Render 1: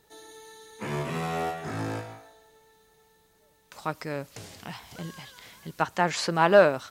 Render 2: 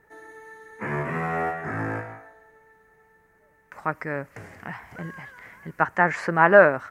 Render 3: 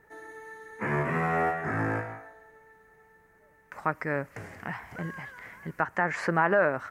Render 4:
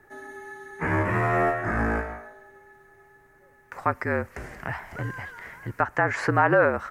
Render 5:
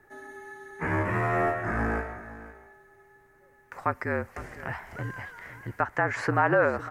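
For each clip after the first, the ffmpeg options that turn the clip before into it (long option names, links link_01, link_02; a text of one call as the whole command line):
ffmpeg -i in.wav -af "highshelf=frequency=2600:width_type=q:width=3:gain=-12,volume=2dB" out.wav
ffmpeg -i in.wav -af "alimiter=limit=-12.5dB:level=0:latency=1:release=214" out.wav
ffmpeg -i in.wav -af "afreqshift=-47,volume=4dB" out.wav
ffmpeg -i in.wav -af "aecho=1:1:506:0.158,volume=-3dB" out.wav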